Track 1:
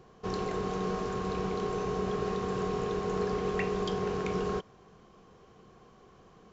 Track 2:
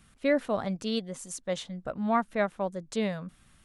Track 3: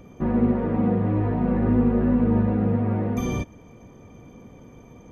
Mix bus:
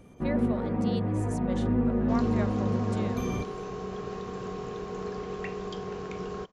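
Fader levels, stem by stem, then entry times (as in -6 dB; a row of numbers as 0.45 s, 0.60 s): -4.5 dB, -9.0 dB, -6.0 dB; 1.85 s, 0.00 s, 0.00 s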